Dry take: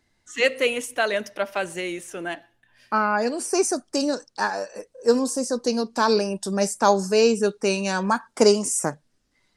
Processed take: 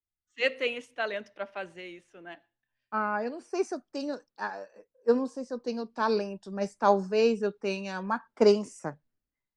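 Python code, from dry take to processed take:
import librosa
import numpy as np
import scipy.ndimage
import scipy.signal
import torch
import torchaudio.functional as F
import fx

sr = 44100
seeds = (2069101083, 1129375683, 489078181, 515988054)

y = scipy.signal.sosfilt(scipy.signal.butter(2, 3400.0, 'lowpass', fs=sr, output='sos'), x)
y = fx.band_widen(y, sr, depth_pct=70)
y = y * 10.0 ** (-8.0 / 20.0)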